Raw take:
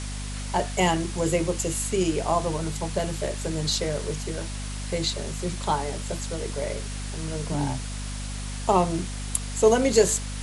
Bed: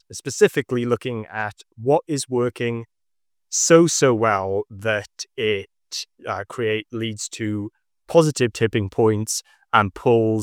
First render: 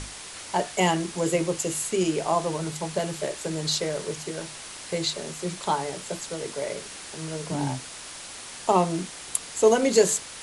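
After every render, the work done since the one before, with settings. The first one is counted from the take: notches 50/100/150/200/250 Hz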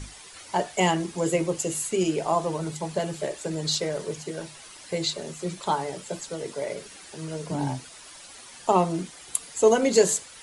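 denoiser 10 dB, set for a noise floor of -41 dBFS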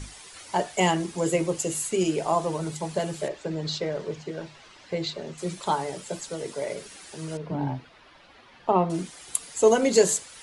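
3.28–5.38 air absorption 150 m; 7.37–8.9 air absorption 330 m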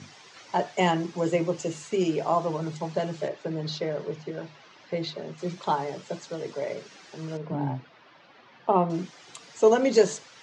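elliptic band-pass 120–6100 Hz, stop band 40 dB; high shelf 4100 Hz -6 dB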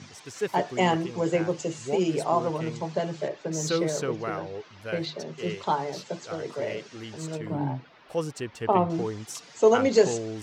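add bed -14.5 dB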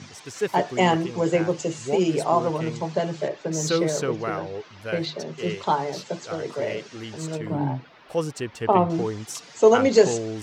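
gain +3.5 dB

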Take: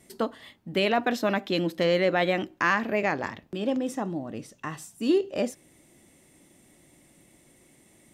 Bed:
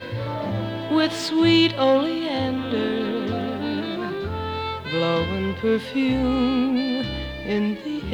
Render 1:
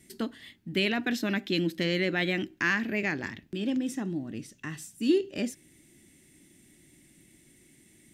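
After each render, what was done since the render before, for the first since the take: band shelf 770 Hz -12 dB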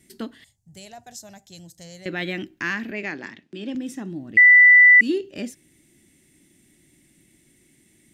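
0.44–2.06 EQ curve 120 Hz 0 dB, 290 Hz -30 dB, 740 Hz -3 dB, 1200 Hz -19 dB, 2500 Hz -22 dB, 3700 Hz -15 dB, 7000 Hz +8 dB, 14000 Hz -5 dB; 2.91–3.75 BPF 210–7400 Hz; 4.37–5.01 bleep 1980 Hz -7.5 dBFS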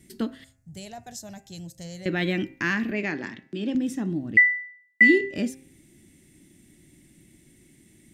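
low shelf 340 Hz +7 dB; de-hum 132 Hz, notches 21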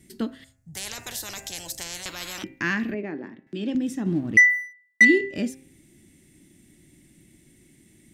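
0.75–2.44 spectral compressor 10:1; 2.94–3.47 band-pass 380 Hz, Q 0.76; 4.06–5.05 sample leveller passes 1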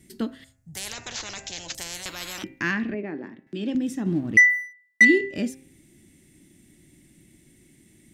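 0.93–1.75 careless resampling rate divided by 3×, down none, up filtered; 2.71–3.14 air absorption 110 m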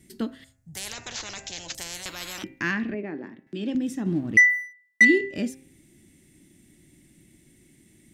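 gain -1 dB

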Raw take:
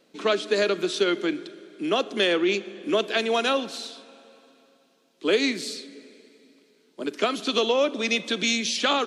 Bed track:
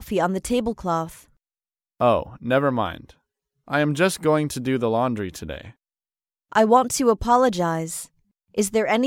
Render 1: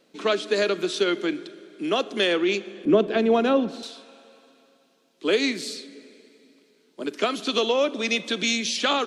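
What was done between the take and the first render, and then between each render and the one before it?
2.85–3.83 tilt -4.5 dB/oct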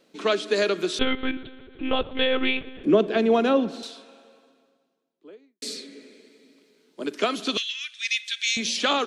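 0.99–2.84 monotone LPC vocoder at 8 kHz 260 Hz; 3.8–5.62 studio fade out; 7.57–8.57 steep high-pass 1700 Hz 48 dB/oct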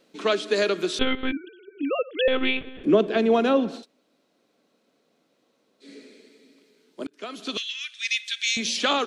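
1.32–2.28 sine-wave speech; 3.81–5.85 room tone, crossfade 0.10 s; 7.07–7.81 fade in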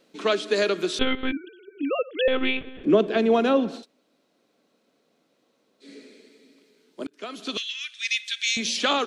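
2.06–2.9 air absorption 72 m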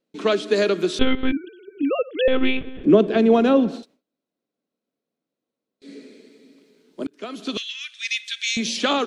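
gate with hold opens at -52 dBFS; low shelf 400 Hz +8.5 dB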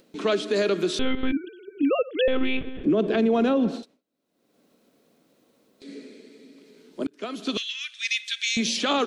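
limiter -14.5 dBFS, peak gain reduction 11 dB; upward compressor, threshold -44 dBFS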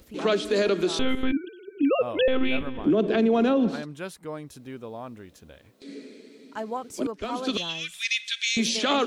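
add bed track -16.5 dB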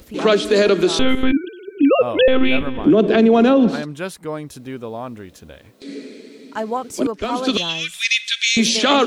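gain +8.5 dB

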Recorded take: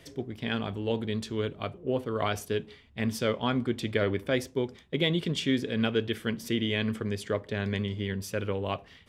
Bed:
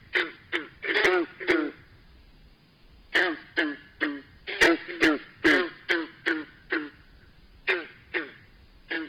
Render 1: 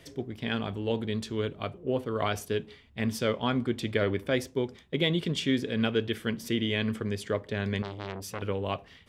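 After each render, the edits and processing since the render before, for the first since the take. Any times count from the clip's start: 7.82–8.42 core saturation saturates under 1300 Hz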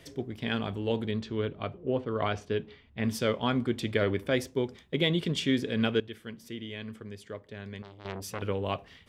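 1.11–3.04 air absorption 150 m; 6–8.05 gain -11 dB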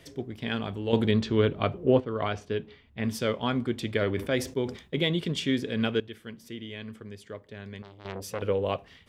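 0.93–2 gain +8 dB; 4.02–5.05 sustainer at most 130 dB/s; 8.15–8.77 bell 510 Hz +8 dB 0.51 oct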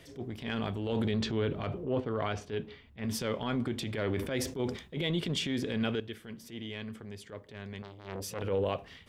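limiter -19.5 dBFS, peak gain reduction 11 dB; transient shaper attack -10 dB, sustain +2 dB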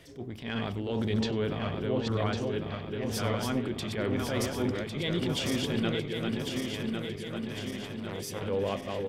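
regenerating reverse delay 0.551 s, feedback 73%, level -3.5 dB; echo 97 ms -21.5 dB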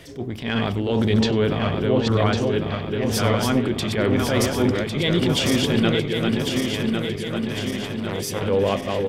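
gain +10 dB

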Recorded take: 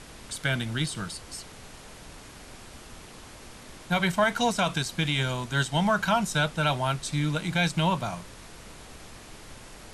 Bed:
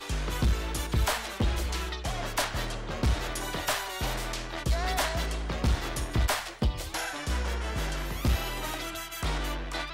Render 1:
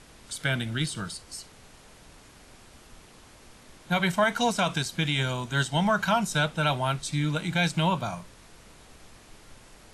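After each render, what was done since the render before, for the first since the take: noise print and reduce 6 dB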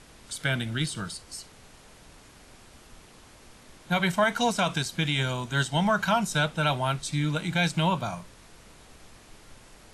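nothing audible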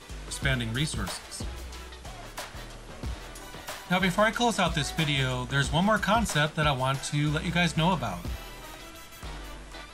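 add bed -9.5 dB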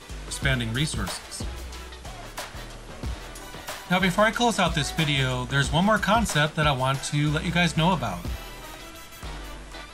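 gain +3 dB

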